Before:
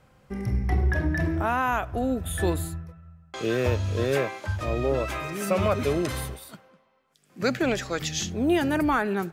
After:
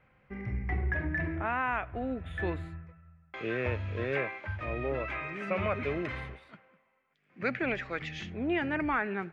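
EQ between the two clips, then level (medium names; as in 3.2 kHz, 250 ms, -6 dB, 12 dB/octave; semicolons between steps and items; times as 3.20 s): resonant low-pass 2.2 kHz, resonance Q 3.1; -8.5 dB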